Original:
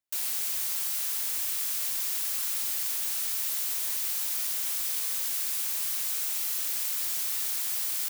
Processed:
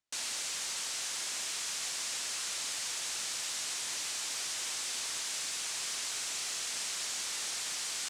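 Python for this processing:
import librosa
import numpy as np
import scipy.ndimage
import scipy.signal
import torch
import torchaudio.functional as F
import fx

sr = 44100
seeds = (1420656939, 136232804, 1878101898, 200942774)

p1 = scipy.signal.sosfilt(scipy.signal.butter(4, 8000.0, 'lowpass', fs=sr, output='sos'), x)
p2 = 10.0 ** (-36.0 / 20.0) * np.tanh(p1 / 10.0 ** (-36.0 / 20.0))
y = p1 + (p2 * 10.0 ** (-9.5 / 20.0))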